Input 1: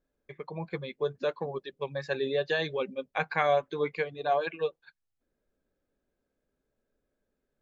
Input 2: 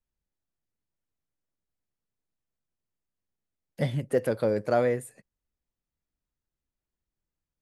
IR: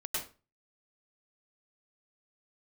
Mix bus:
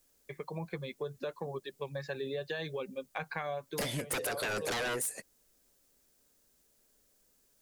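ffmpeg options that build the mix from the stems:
-filter_complex "[0:a]acrossover=split=130[link_01][link_02];[link_02]acompressor=threshold=-42dB:ratio=2[link_03];[link_01][link_03]amix=inputs=2:normalize=0,volume=2dB[link_04];[1:a]bass=frequency=250:gain=-15,treble=frequency=4000:gain=12,alimiter=limit=-19dB:level=0:latency=1:release=392,aeval=exprs='0.133*sin(PI/2*5.62*val(0)/0.133)':channel_layout=same,volume=-5dB[link_05];[link_04][link_05]amix=inputs=2:normalize=0,acompressor=threshold=-32dB:ratio=12"

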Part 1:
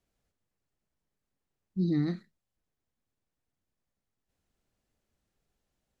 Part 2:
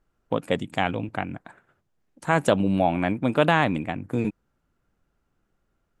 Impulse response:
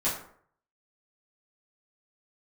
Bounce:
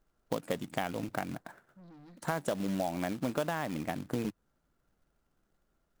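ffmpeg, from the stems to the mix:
-filter_complex "[0:a]alimiter=limit=-23dB:level=0:latency=1:release=38,asoftclip=type=tanh:threshold=-37dB,volume=-15dB[link_01];[1:a]equalizer=frequency=100:width_type=o:width=0.33:gain=-8,equalizer=frequency=630:width_type=o:width=0.33:gain=3,equalizer=frequency=2500:width_type=o:width=0.33:gain=-5,acrusher=bits=3:mode=log:mix=0:aa=0.000001,volume=-3dB[link_02];[link_01][link_02]amix=inputs=2:normalize=0,acompressor=threshold=-29dB:ratio=6"

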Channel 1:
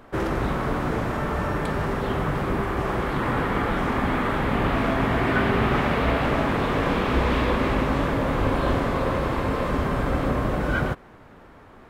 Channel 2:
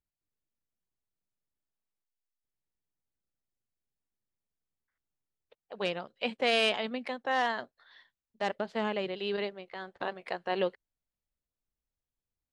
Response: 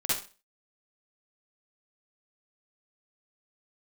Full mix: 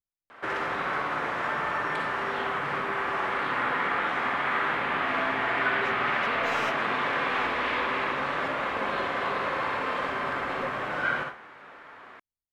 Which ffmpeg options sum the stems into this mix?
-filter_complex "[0:a]acompressor=threshold=-27dB:ratio=2.5,bandpass=frequency=1900:width_type=q:width=0.86:csg=0,adelay=300,volume=3dB,asplit=2[link_01][link_02];[link_02]volume=-7.5dB[link_03];[1:a]aeval=exprs='clip(val(0),-1,0.0531)':channel_layout=same,volume=-9dB[link_04];[2:a]atrim=start_sample=2205[link_05];[link_03][link_05]afir=irnorm=-1:irlink=0[link_06];[link_01][link_04][link_06]amix=inputs=3:normalize=0"

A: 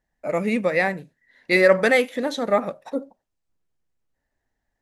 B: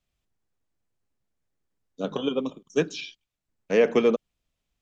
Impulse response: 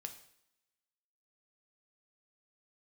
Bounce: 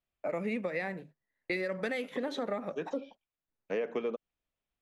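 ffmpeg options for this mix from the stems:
-filter_complex "[0:a]bandreject=frequency=50:width_type=h:width=6,bandreject=frequency=100:width_type=h:width=6,bandreject=frequency=150:width_type=h:width=6,agate=range=-26dB:threshold=-44dB:ratio=16:detection=peak,acrossover=split=300|3000[link_01][link_02][link_03];[link_02]acompressor=threshold=-27dB:ratio=6[link_04];[link_01][link_04][link_03]amix=inputs=3:normalize=0,volume=-2dB,asplit=2[link_05][link_06];[1:a]volume=-5.5dB[link_07];[link_06]apad=whole_len=212452[link_08];[link_07][link_08]sidechaincompress=threshold=-43dB:ratio=8:attack=16:release=182[link_09];[link_05][link_09]amix=inputs=2:normalize=0,bass=frequency=250:gain=-7,treble=frequency=4000:gain=-13,acompressor=threshold=-30dB:ratio=6"

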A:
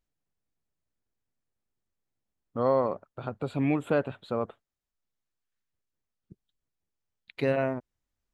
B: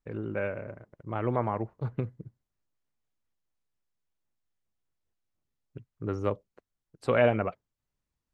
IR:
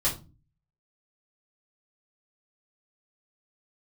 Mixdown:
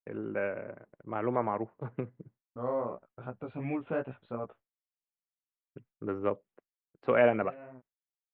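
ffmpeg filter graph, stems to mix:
-filter_complex "[0:a]flanger=delay=15.5:depth=2.9:speed=2.7,volume=-4dB[link_01];[1:a]highpass=190,volume=-0.5dB,asplit=2[link_02][link_03];[link_03]apad=whole_len=367521[link_04];[link_01][link_04]sidechaincompress=threshold=-36dB:ratio=6:attack=6.1:release=1020[link_05];[link_05][link_02]amix=inputs=2:normalize=0,agate=range=-33dB:threshold=-55dB:ratio=3:detection=peak,lowpass=frequency=2700:width=0.5412,lowpass=frequency=2700:width=1.3066"

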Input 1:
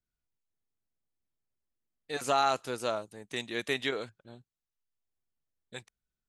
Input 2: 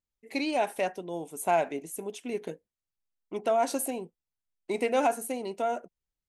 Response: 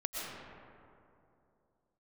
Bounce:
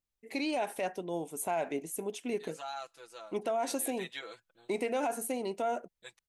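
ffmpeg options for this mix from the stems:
-filter_complex "[0:a]highpass=frequency=710:poles=1,aecho=1:1:6:0.87,adelay=300,volume=-7.5dB,afade=type=in:start_time=3.93:duration=0.45:silence=0.375837[link_01];[1:a]volume=0dB[link_02];[link_01][link_02]amix=inputs=2:normalize=0,alimiter=limit=-23.5dB:level=0:latency=1:release=86"

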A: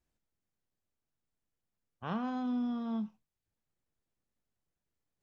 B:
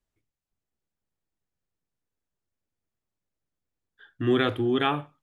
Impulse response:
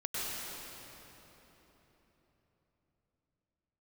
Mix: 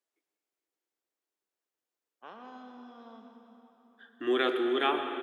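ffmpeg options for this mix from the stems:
-filter_complex "[0:a]acompressor=threshold=-35dB:ratio=6,adelay=200,volume=-7.5dB,asplit=2[link_01][link_02];[link_02]volume=-6dB[link_03];[1:a]volume=-4.5dB,asplit=2[link_04][link_05];[link_05]volume=-9dB[link_06];[2:a]atrim=start_sample=2205[link_07];[link_03][link_06]amix=inputs=2:normalize=0[link_08];[link_08][link_07]afir=irnorm=-1:irlink=0[link_09];[link_01][link_04][link_09]amix=inputs=3:normalize=0,highpass=frequency=320:width=0.5412,highpass=frequency=320:width=1.3066"

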